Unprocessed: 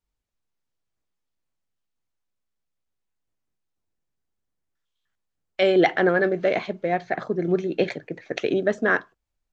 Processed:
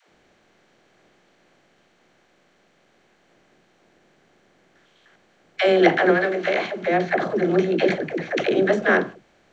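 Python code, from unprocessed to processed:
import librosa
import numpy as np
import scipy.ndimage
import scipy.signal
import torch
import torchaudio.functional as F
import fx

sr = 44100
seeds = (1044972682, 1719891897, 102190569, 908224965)

y = fx.bin_compress(x, sr, power=0.6)
y = fx.low_shelf(y, sr, hz=440.0, db=-11.0, at=(6.1, 6.76))
y = fx.dispersion(y, sr, late='lows', ms=100.0, hz=360.0)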